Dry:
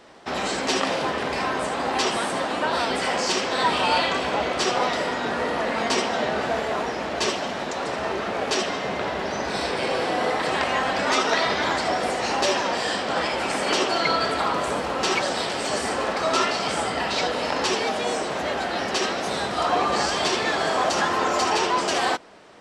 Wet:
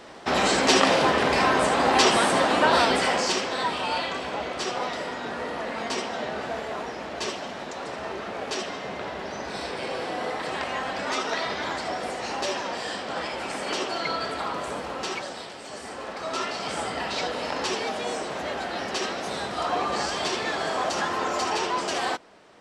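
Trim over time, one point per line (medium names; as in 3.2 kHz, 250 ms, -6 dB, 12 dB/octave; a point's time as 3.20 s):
2.77 s +4.5 dB
3.76 s -6.5 dB
14.94 s -6.5 dB
15.61 s -14 dB
16.81 s -4.5 dB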